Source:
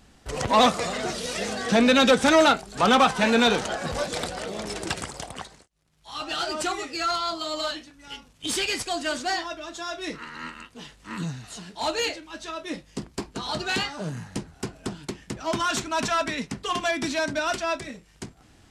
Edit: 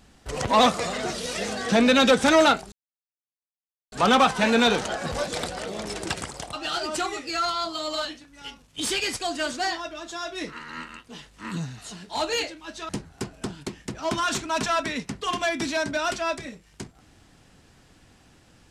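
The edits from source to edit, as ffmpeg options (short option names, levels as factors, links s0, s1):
-filter_complex "[0:a]asplit=4[s0][s1][s2][s3];[s0]atrim=end=2.72,asetpts=PTS-STARTPTS,afade=t=out:st=2.716:d=0.004:c=hsin,apad=pad_dur=1.2[s4];[s1]atrim=start=2.72:end=5.332,asetpts=PTS-STARTPTS,afade=t=in:d=0.004:c=hsin[s5];[s2]atrim=start=6.188:end=12.552[s6];[s3]atrim=start=14.308[s7];[s4][s5]concat=n=2:v=0:a=1[s8];[s8][s6]acrossfade=d=0.004:c1=hsin:c2=hsin[s9];[s9][s7]acrossfade=d=0.004:c1=hsin:c2=hsin"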